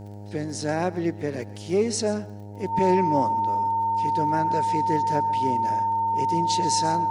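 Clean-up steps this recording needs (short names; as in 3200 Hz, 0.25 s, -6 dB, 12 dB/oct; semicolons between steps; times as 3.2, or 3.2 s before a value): de-click; de-hum 102.3 Hz, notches 9; notch 910 Hz, Q 30; inverse comb 0.134 s -18 dB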